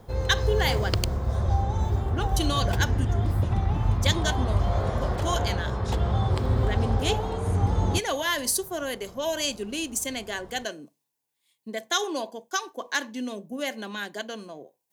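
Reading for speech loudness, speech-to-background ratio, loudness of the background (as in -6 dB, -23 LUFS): -30.0 LUFS, -3.5 dB, -26.5 LUFS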